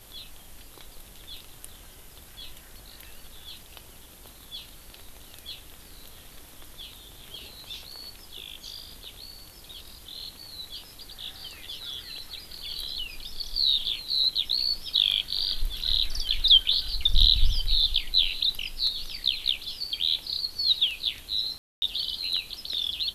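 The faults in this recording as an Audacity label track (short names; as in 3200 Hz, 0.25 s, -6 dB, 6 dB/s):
21.580000	21.820000	gap 0.24 s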